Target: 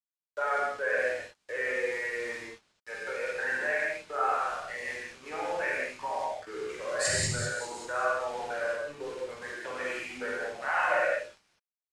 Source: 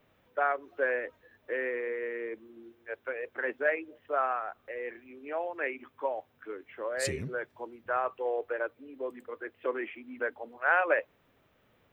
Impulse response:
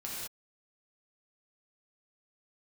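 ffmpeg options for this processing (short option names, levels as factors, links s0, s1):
-filter_complex "[0:a]acrossover=split=440|2900[s0][s1][s2];[s0]asoftclip=type=tanh:threshold=0.0126[s3];[s2]asplit=7[s4][s5][s6][s7][s8][s9][s10];[s5]adelay=197,afreqshift=-110,volume=0.422[s11];[s6]adelay=394,afreqshift=-220,volume=0.224[s12];[s7]adelay=591,afreqshift=-330,volume=0.119[s13];[s8]adelay=788,afreqshift=-440,volume=0.0631[s14];[s9]adelay=985,afreqshift=-550,volume=0.0331[s15];[s10]adelay=1182,afreqshift=-660,volume=0.0176[s16];[s4][s11][s12][s13][s14][s15][s16]amix=inputs=7:normalize=0[s17];[s3][s1][s17]amix=inputs=3:normalize=0,flanger=delay=1:depth=1.4:regen=19:speed=0.84:shape=sinusoidal,equalizer=f=100:w=1.5:g=6,bandreject=f=60:t=h:w=6,bandreject=f=120:t=h:w=6,bandreject=f=180:t=h:w=6,bandreject=f=240:t=h:w=6,bandreject=f=300:t=h:w=6,bandreject=f=360:t=h:w=6,bandreject=f=420:t=h:w=6,bandreject=f=480:t=h:w=6,bandreject=f=540:t=h:w=6,bandreject=f=600:t=h:w=6,asplit=2[s18][s19];[s19]acompressor=threshold=0.00631:ratio=6,volume=1.33[s20];[s18][s20]amix=inputs=2:normalize=0,highshelf=f=3200:g=10,asplit=2[s21][s22];[s22]adelay=48,volume=0.447[s23];[s21][s23]amix=inputs=2:normalize=0,aeval=exprs='val(0)*gte(abs(val(0)),0.00891)':c=same,lowpass=f=9400:w=0.5412,lowpass=f=9400:w=1.3066[s24];[1:a]atrim=start_sample=2205[s25];[s24][s25]afir=irnorm=-1:irlink=0"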